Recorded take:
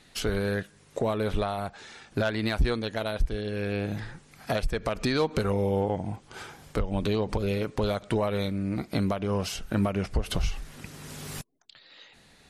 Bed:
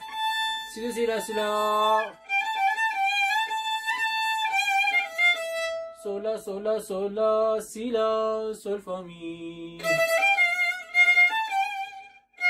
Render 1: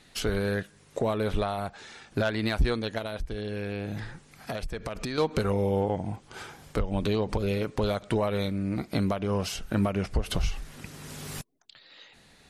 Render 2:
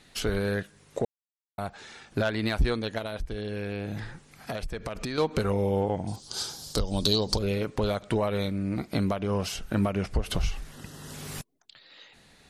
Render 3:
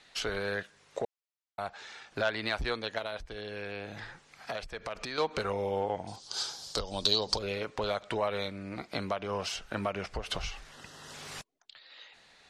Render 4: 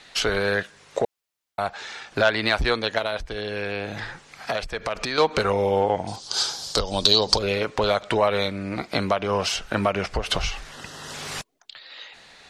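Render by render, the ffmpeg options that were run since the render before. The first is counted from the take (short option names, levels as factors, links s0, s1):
-filter_complex "[0:a]asettb=1/sr,asplit=3[s0][s1][s2];[s0]atrim=end=2.984[s3];[s1]atrim=start=2.98:end=5.18,asetpts=PTS-STARTPTS,afade=t=in:d=0.004:c=qsin,afade=t=out:st=2.196:d=0.004:c=qsin,acompressor=threshold=0.0355:ratio=6:attack=3.2:release=140:knee=1:detection=peak[s4];[s2]atrim=start=5.176[s5];[s3][s4]acrossfade=d=0.004:c1=hsin:c2=qsin[s6];[s6][s5]acrossfade=d=0.004:c1=qsin:c2=hsin"
-filter_complex "[0:a]asettb=1/sr,asplit=3[s0][s1][s2];[s0]atrim=end=6.074[s3];[s1]atrim=start=6.07:end=7.39,asetpts=PTS-STARTPTS,afade=t=in:d=0.004:c=qsin,afade=t=out:st=1.316:d=0.004:c=qsin,highshelf=f=3200:t=q:w=3:g=12.5[s4];[s2]atrim=start=7.386[s5];[s3][s4]acrossfade=d=0.004:c1=hsin:c2=qsin[s6];[s6][s5]acrossfade=d=0.004:c1=qsin:c2=hsin,asettb=1/sr,asplit=3[s7][s8][s9];[s7]atrim=end=10.714[s10];[s8]atrim=start=10.71:end=11.14,asetpts=PTS-STARTPTS,afade=t=in:d=0.004:c=qsin,afade=t=out:st=0.426:d=0.004:c=qsin,asuperstop=centerf=2300:order=4:qfactor=4[s11];[s9]atrim=start=11.136[s12];[s10][s11]acrossfade=d=0.004:c1=hsin:c2=qsin[s13];[s13][s12]acrossfade=d=0.004:c1=qsin:c2=hsin,asplit=3[s14][s15][s16];[s14]atrim=end=1.05,asetpts=PTS-STARTPTS,afade=t=out:st=1.046:d=0.004:c=hsin[s17];[s15]atrim=start=1.05:end=1.58,asetpts=PTS-STARTPTS,volume=0[s18];[s16]atrim=start=1.58,asetpts=PTS-STARTPTS,afade=t=in:d=0.004:c=hsin[s19];[s17][s18][s19]concat=n=3:v=0:a=1"
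-filter_complex "[0:a]acrossover=split=490 7500:gain=0.224 1 0.141[s0][s1][s2];[s0][s1][s2]amix=inputs=3:normalize=0"
-af "volume=3.35,alimiter=limit=0.794:level=0:latency=1"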